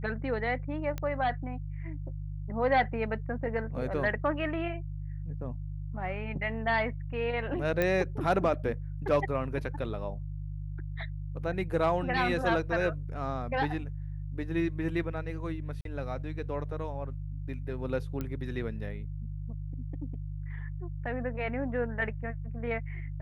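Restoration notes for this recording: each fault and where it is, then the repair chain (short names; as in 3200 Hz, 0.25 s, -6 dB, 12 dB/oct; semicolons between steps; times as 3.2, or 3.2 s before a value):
hum 50 Hz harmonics 3 -37 dBFS
0.98 pop -21 dBFS
7.82 pop -15 dBFS
15.81–15.85 gap 42 ms
18.21 pop -22 dBFS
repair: de-click; de-hum 50 Hz, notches 3; interpolate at 15.81, 42 ms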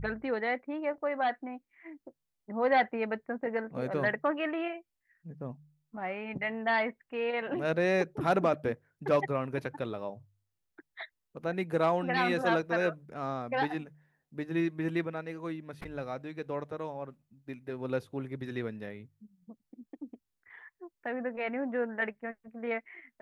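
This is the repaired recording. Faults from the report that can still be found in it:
none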